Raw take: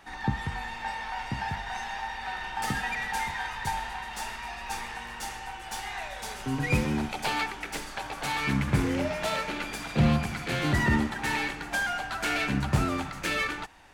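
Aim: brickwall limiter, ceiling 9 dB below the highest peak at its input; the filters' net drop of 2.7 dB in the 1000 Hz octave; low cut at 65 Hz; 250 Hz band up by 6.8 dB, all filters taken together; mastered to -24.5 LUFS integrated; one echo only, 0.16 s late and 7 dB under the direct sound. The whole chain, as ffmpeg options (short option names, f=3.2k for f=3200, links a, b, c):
-af "highpass=65,equalizer=f=250:t=o:g=8.5,equalizer=f=1k:t=o:g=-4,alimiter=limit=-17.5dB:level=0:latency=1,aecho=1:1:160:0.447,volume=5dB"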